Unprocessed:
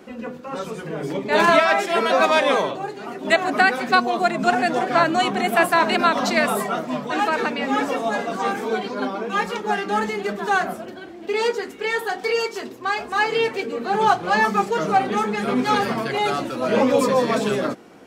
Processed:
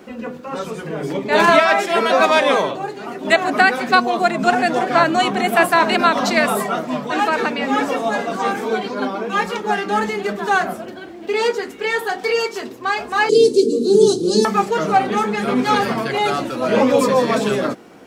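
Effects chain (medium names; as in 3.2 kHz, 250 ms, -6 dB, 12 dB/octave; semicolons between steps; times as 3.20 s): 13.29–14.45 s: FFT filter 120 Hz 0 dB, 410 Hz +13 dB, 700 Hz -20 dB, 2 kHz -29 dB, 4.1 kHz +8 dB, 10 kHz +14 dB, 15 kHz -8 dB; bit crusher 12-bit; trim +3 dB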